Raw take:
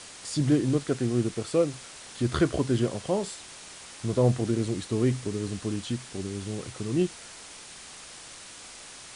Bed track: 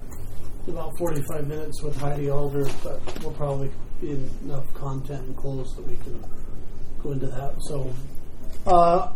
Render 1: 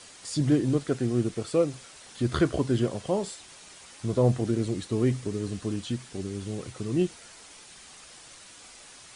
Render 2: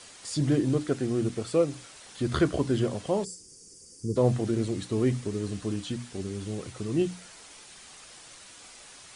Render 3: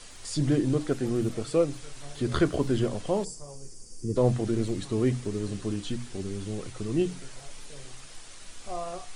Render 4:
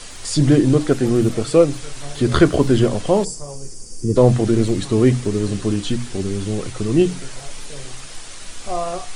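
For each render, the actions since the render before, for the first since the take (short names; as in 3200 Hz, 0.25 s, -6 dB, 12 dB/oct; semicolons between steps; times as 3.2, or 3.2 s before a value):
denoiser 6 dB, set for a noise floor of -46 dBFS
notches 60/120/180/240/300 Hz; 3.24–4.16 spectral gain 520–4500 Hz -24 dB
add bed track -19 dB
gain +11 dB; limiter -1 dBFS, peak gain reduction 1.5 dB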